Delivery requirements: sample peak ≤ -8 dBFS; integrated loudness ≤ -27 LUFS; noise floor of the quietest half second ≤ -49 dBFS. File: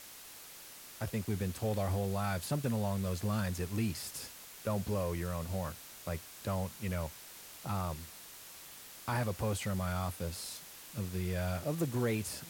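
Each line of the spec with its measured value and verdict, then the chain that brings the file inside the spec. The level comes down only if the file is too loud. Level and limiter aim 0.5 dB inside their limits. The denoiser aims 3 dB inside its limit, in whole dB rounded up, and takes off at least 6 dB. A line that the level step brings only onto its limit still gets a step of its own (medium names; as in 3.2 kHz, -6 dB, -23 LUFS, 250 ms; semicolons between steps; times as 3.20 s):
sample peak -21.5 dBFS: pass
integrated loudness -36.5 LUFS: pass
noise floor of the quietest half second -51 dBFS: pass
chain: none needed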